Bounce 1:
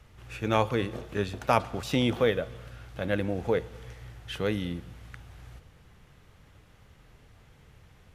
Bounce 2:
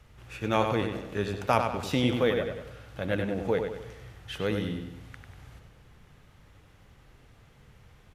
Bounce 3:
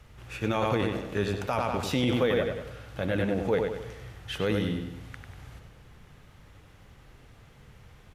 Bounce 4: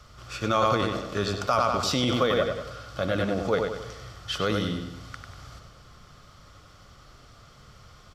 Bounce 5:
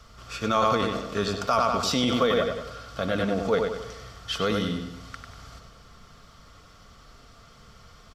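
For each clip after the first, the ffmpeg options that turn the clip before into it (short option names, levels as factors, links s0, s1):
-filter_complex "[0:a]asplit=2[s0][s1];[s1]adelay=96,lowpass=f=4800:p=1,volume=0.531,asplit=2[s2][s3];[s3]adelay=96,lowpass=f=4800:p=1,volume=0.45,asplit=2[s4][s5];[s5]adelay=96,lowpass=f=4800:p=1,volume=0.45,asplit=2[s6][s7];[s7]adelay=96,lowpass=f=4800:p=1,volume=0.45,asplit=2[s8][s9];[s9]adelay=96,lowpass=f=4800:p=1,volume=0.45[s10];[s0][s2][s4][s6][s8][s10]amix=inputs=6:normalize=0,volume=0.891"
-af "alimiter=limit=0.112:level=0:latency=1:release=11,volume=1.41"
-af "superequalizer=8b=1.78:10b=3.16:13b=2:14b=3.98:15b=2.24"
-af "aecho=1:1:4.4:0.37"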